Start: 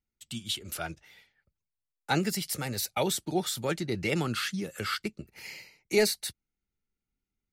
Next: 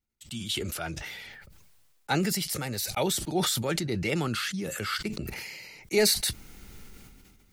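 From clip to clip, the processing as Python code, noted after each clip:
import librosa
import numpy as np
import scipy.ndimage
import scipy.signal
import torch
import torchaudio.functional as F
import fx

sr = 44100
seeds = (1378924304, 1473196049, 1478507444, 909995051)

y = fx.sustainer(x, sr, db_per_s=28.0)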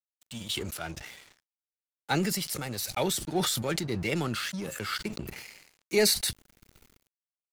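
y = np.sign(x) * np.maximum(np.abs(x) - 10.0 ** (-42.5 / 20.0), 0.0)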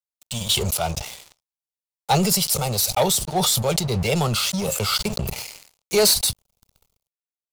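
y = fx.rider(x, sr, range_db=3, speed_s=0.5)
y = fx.fixed_phaser(y, sr, hz=710.0, stages=4)
y = fx.leveller(y, sr, passes=3)
y = F.gain(torch.from_numpy(y), 2.0).numpy()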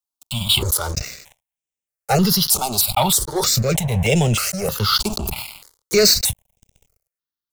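y = fx.phaser_held(x, sr, hz=3.2, low_hz=510.0, high_hz=4400.0)
y = F.gain(torch.from_numpy(y), 6.0).numpy()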